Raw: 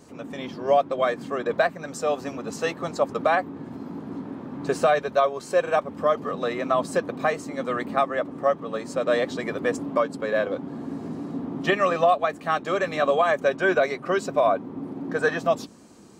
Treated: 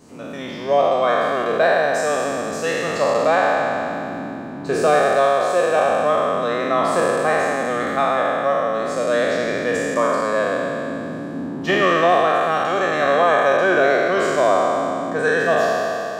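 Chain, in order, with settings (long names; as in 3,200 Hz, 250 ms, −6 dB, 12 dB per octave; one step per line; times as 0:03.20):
peak hold with a decay on every bin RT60 2.98 s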